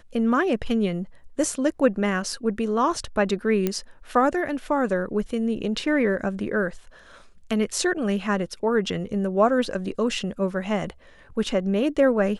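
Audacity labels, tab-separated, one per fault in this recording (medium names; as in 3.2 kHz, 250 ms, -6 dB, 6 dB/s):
3.670000	3.670000	pop -10 dBFS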